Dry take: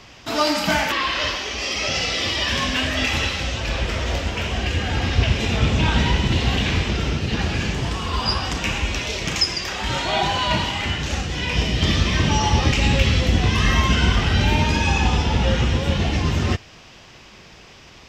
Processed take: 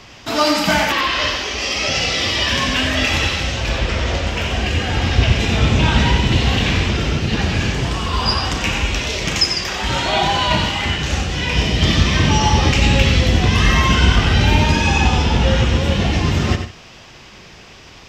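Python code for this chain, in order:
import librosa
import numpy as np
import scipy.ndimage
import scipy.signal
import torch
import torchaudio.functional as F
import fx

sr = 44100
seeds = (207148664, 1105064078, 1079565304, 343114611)

y = fx.lowpass(x, sr, hz=7500.0, slope=12, at=(3.78, 4.27))
y = fx.echo_multitap(y, sr, ms=(92, 152), db=(-8.5, -18.5))
y = F.gain(torch.from_numpy(y), 3.5).numpy()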